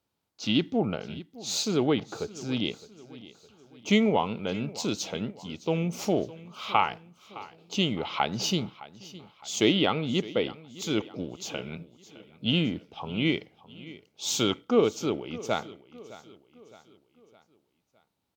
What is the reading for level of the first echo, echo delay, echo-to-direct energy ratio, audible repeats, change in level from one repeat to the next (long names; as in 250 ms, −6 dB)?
−18.5 dB, 612 ms, −17.5 dB, 3, −6.5 dB